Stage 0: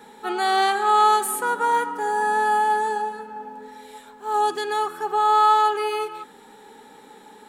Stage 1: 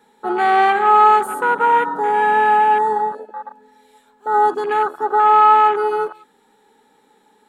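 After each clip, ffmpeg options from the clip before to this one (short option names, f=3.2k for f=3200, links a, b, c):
-af "acontrast=76,afwtdn=0.0891"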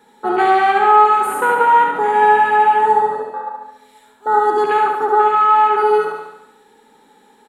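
-filter_complex "[0:a]acompressor=threshold=-15dB:ratio=6,asplit=2[a][b];[b]aecho=0:1:71|142|213|284|355|426|497|568:0.631|0.353|0.198|0.111|0.0621|0.0347|0.0195|0.0109[c];[a][c]amix=inputs=2:normalize=0,volume=3.5dB"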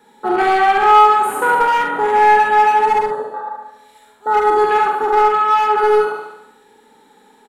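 -filter_complex "[0:a]acrossover=split=1200[a][b];[a]asoftclip=type=hard:threshold=-12.5dB[c];[c][b]amix=inputs=2:normalize=0,asplit=2[d][e];[e]adelay=45,volume=-6dB[f];[d][f]amix=inputs=2:normalize=0"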